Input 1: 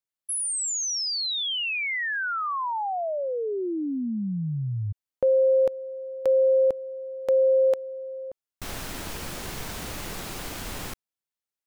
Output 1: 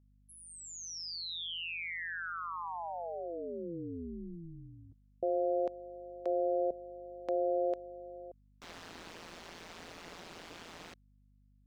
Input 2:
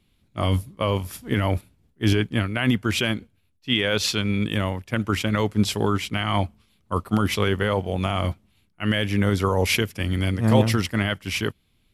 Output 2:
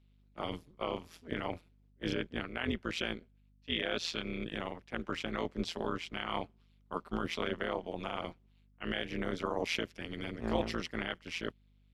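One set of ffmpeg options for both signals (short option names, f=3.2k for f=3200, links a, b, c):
-filter_complex "[0:a]acrossover=split=170 6400:gain=0.0708 1 0.112[a][b][c];[a][b][c]amix=inputs=3:normalize=0,tremolo=f=170:d=0.974,aeval=exprs='val(0)+0.00141*(sin(2*PI*50*n/s)+sin(2*PI*2*50*n/s)/2+sin(2*PI*3*50*n/s)/3+sin(2*PI*4*50*n/s)/4+sin(2*PI*5*50*n/s)/5)':c=same,volume=-7.5dB"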